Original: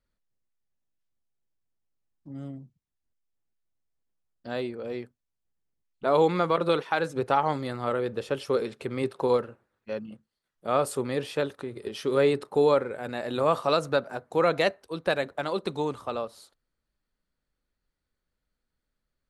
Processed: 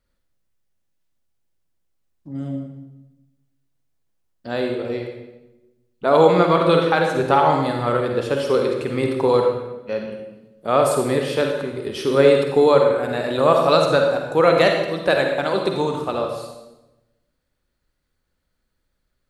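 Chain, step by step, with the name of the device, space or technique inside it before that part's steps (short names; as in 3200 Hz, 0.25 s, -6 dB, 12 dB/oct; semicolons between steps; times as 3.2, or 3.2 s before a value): bathroom (reverb RT60 1.0 s, pre-delay 42 ms, DRR 2 dB); gain +6.5 dB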